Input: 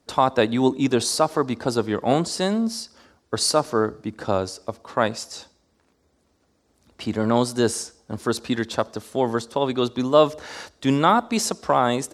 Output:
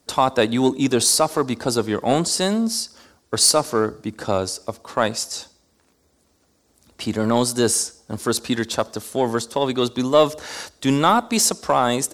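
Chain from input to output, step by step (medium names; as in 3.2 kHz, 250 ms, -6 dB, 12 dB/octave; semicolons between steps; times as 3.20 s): treble shelf 5.9 kHz +11.5 dB; in parallel at -8.5 dB: overload inside the chain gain 16 dB; on the sum: trim -1 dB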